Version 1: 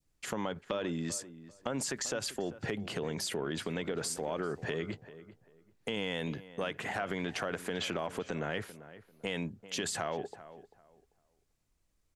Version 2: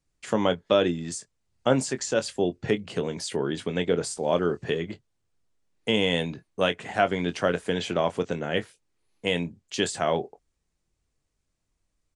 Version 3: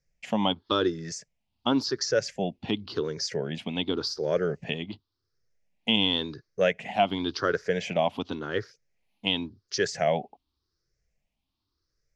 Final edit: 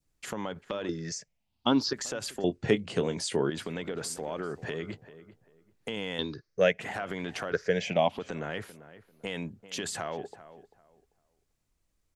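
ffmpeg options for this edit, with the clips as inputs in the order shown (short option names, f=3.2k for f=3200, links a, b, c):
-filter_complex "[2:a]asplit=3[a][b][c];[0:a]asplit=5[d][e][f][g][h];[d]atrim=end=0.892[i];[a]atrim=start=0.888:end=1.932[j];[e]atrim=start=1.928:end=2.442[k];[1:a]atrim=start=2.438:end=3.502[l];[f]atrim=start=3.498:end=6.192[m];[b]atrim=start=6.188:end=6.812[n];[g]atrim=start=6.808:end=7.522[o];[c]atrim=start=7.518:end=8.182[p];[h]atrim=start=8.178[q];[i][j]acrossfade=d=0.004:c1=hsin:c2=hsin[r];[r][k]acrossfade=d=0.004:c1=hsin:c2=hsin[s];[s][l]acrossfade=d=0.004:c1=hsin:c2=hsin[t];[t][m]acrossfade=d=0.004:c1=hsin:c2=hsin[u];[u][n]acrossfade=d=0.004:c1=hsin:c2=hsin[v];[v][o]acrossfade=d=0.004:c1=hsin:c2=hsin[w];[w][p]acrossfade=d=0.004:c1=hsin:c2=hsin[x];[x][q]acrossfade=d=0.004:c1=hsin:c2=hsin"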